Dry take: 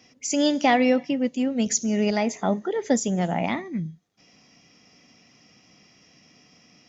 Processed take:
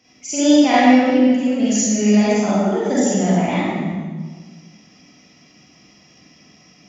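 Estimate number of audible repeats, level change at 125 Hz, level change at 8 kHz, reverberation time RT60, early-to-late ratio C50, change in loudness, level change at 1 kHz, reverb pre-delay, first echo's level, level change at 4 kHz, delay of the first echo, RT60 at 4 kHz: none, +8.0 dB, n/a, 1.5 s, -5.5 dB, +7.5 dB, +6.5 dB, 38 ms, none, +5.5 dB, none, 1.2 s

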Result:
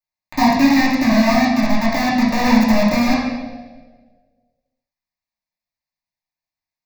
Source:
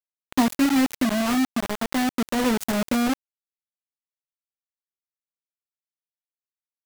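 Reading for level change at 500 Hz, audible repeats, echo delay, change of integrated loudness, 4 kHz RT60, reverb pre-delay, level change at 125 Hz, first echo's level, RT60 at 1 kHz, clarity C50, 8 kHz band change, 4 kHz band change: +8.0 dB, none, none, +7.5 dB, 1.1 s, 3 ms, +11.0 dB, none, 1.2 s, 0.5 dB, +0.5 dB, +6.0 dB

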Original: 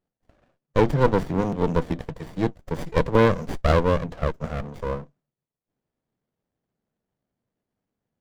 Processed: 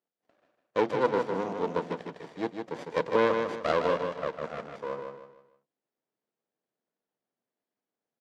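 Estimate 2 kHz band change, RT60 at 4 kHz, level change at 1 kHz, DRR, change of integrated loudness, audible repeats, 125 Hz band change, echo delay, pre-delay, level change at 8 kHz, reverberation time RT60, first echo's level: -4.0 dB, none, -4.0 dB, none, -6.0 dB, 4, -19.0 dB, 0.154 s, none, n/a, none, -5.5 dB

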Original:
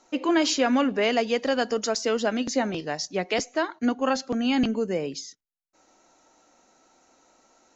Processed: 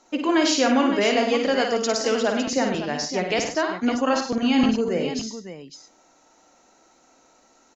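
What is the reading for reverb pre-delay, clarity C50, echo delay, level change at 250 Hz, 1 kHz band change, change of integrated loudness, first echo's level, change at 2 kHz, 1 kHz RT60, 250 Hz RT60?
none, none, 55 ms, +3.5 dB, +3.5 dB, +3.0 dB, -6.0 dB, +3.5 dB, none, none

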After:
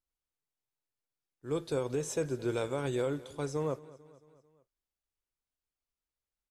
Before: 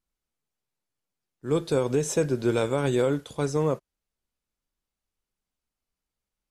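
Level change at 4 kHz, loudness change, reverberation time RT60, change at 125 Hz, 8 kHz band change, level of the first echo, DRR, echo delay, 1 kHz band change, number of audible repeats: -8.0 dB, -8.5 dB, none, -9.0 dB, -8.0 dB, -20.0 dB, none, 0.222 s, -8.0 dB, 3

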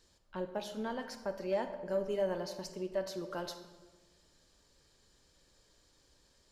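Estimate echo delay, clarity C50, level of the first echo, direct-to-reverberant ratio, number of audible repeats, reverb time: none, 9.5 dB, none, 8.5 dB, none, 1.3 s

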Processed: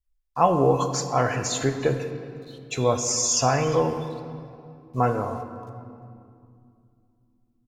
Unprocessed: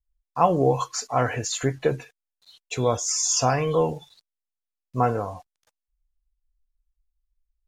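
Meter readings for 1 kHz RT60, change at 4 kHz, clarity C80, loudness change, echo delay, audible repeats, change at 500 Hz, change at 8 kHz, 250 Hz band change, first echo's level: 2.4 s, +0.5 dB, 9.0 dB, 0.0 dB, 0.352 s, 1, +1.0 dB, +0.5 dB, +1.5 dB, -23.5 dB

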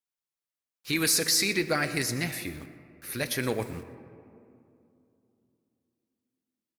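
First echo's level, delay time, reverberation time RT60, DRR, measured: -17.5 dB, 0.12 s, 2.7 s, 10.5 dB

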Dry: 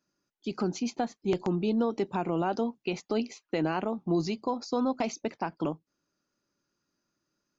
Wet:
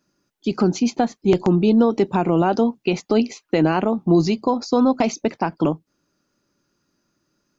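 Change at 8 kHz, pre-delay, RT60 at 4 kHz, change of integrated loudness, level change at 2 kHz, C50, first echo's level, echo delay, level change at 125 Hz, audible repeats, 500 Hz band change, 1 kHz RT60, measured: n/a, none, none, +11.5 dB, +9.0 dB, none, none, none, +12.5 dB, none, +11.0 dB, none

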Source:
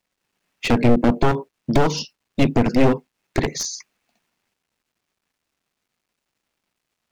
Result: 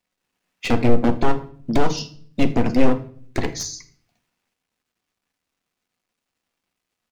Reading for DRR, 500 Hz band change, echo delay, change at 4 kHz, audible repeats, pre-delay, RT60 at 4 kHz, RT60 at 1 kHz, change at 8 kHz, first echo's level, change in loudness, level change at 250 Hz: 7.5 dB, -2.0 dB, 80 ms, -2.5 dB, 1, 4 ms, 0.45 s, 0.45 s, -2.5 dB, -22.0 dB, -2.0 dB, -2.0 dB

